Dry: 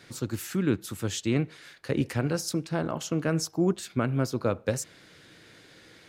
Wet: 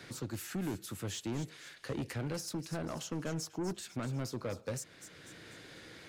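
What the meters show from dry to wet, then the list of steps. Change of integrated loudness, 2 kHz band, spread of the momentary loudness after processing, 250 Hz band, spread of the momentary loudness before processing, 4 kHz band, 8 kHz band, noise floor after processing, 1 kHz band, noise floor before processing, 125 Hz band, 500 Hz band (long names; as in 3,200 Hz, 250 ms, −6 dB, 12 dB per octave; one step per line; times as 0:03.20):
−10.0 dB, −9.0 dB, 13 LU, −11.0 dB, 7 LU, −7.0 dB, −7.0 dB, −57 dBFS, −9.0 dB, −55 dBFS, −9.5 dB, −11.0 dB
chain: soft clipping −25.5 dBFS, distortion −9 dB
on a send: delay with a high-pass on its return 245 ms, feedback 39%, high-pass 2,800 Hz, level −11.5 dB
on the sum: multiband upward and downward compressor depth 40%
level −6 dB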